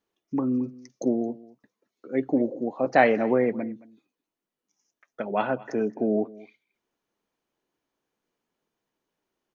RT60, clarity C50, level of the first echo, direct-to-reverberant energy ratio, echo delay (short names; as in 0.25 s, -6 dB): none, none, -21.0 dB, none, 0.22 s